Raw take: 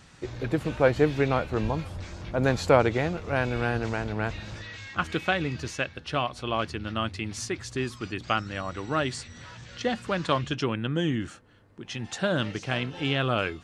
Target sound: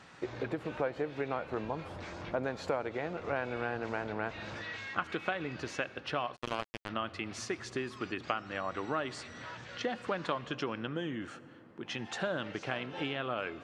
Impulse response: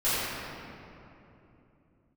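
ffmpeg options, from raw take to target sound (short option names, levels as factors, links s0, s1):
-filter_complex "[0:a]acompressor=threshold=0.0282:ratio=10,highpass=f=540:p=1,asplit=2[s0][s1];[1:a]atrim=start_sample=2205,adelay=68[s2];[s1][s2]afir=irnorm=-1:irlink=0,volume=0.0282[s3];[s0][s3]amix=inputs=2:normalize=0,asplit=3[s4][s5][s6];[s4]afade=t=out:st=6.35:d=0.02[s7];[s5]acrusher=bits=4:mix=0:aa=0.5,afade=t=in:st=6.35:d=0.02,afade=t=out:st=6.88:d=0.02[s8];[s6]afade=t=in:st=6.88:d=0.02[s9];[s7][s8][s9]amix=inputs=3:normalize=0,lowpass=f=1500:p=1,volume=1.88"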